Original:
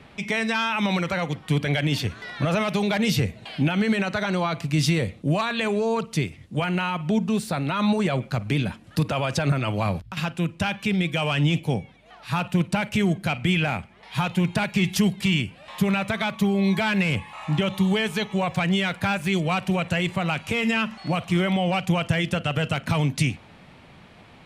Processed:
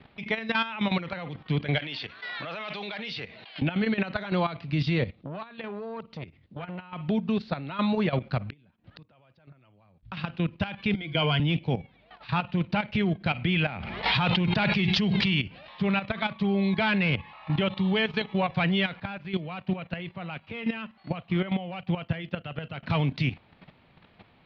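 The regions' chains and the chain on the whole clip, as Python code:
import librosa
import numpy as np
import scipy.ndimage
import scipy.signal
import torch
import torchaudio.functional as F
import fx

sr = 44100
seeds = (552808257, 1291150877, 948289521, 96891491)

y = fx.chain(x, sr, fx.highpass(hz=1100.0, slope=6),
    fx.pre_swell(db_per_s=27.0), at=(1.79, 3.62))
y = fx.chain(y, sr, fx.dynamic_eq(hz=4100.0, q=0.74, threshold_db=-42.0, ratio=4.0, max_db=-6),
    fx.level_steps(step_db=13),
    fx.transformer_sat(knee_hz=620.0), at=(5.1, 6.93))
y = fx.chain(y, sr, fx.high_shelf(hz=4400.0, db=-8.0),
    fx.gate_flip(shuts_db=-26.0, range_db=-27), at=(8.4, 10.03))
y = fx.chain(y, sr, fx.ripple_eq(per_octave=1.8, db=13),
    fx.band_widen(depth_pct=70), at=(10.94, 11.4))
y = fx.chain(y, sr, fx.high_shelf(hz=5400.0, db=7.0),
    fx.pre_swell(db_per_s=26.0), at=(13.8, 15.78))
y = fx.chain(y, sr, fx.highpass(hz=60.0, slope=12),
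    fx.air_absorb(metres=94.0),
    fx.upward_expand(threshold_db=-44.0, expansion=1.5), at=(19.0, 22.83))
y = scipy.signal.sosfilt(scipy.signal.butter(8, 4600.0, 'lowpass', fs=sr, output='sos'), y)
y = fx.level_steps(y, sr, step_db=12)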